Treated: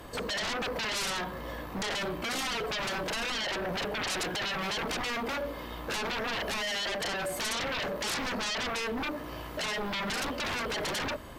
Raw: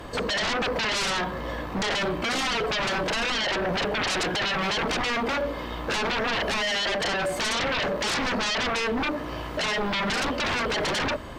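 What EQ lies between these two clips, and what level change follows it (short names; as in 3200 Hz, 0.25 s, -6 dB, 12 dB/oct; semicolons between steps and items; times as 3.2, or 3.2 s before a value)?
bell 13000 Hz +14.5 dB 0.81 oct; -7.0 dB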